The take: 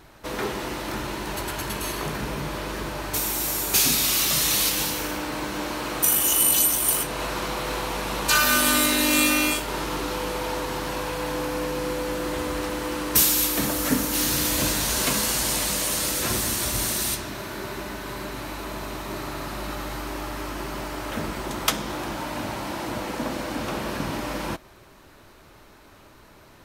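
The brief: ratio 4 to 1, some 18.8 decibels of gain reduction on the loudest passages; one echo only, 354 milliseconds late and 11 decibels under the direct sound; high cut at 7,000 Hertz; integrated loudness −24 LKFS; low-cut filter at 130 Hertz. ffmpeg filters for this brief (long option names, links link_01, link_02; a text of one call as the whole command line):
ffmpeg -i in.wav -af "highpass=130,lowpass=7000,acompressor=threshold=-41dB:ratio=4,aecho=1:1:354:0.282,volume=16dB" out.wav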